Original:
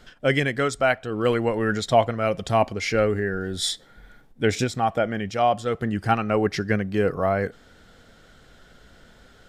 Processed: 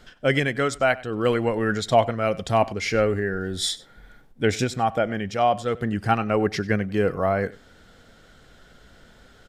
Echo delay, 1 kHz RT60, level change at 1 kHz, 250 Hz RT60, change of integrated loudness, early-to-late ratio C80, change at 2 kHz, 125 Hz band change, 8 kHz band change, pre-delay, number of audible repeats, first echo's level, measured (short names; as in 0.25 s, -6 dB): 96 ms, none, 0.0 dB, none, 0.0 dB, none, 0.0 dB, 0.0 dB, 0.0 dB, none, 1, -20.5 dB